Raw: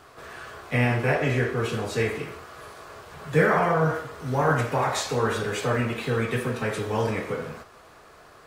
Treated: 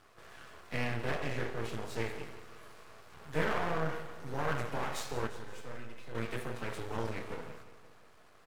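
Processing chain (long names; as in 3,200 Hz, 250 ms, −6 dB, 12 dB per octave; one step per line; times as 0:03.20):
half-wave rectification
0:05.27–0:06.15: tuned comb filter 510 Hz, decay 0.43 s, mix 70%
on a send: repeating echo 173 ms, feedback 58%, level −15 dB
on the sum: level −8 dB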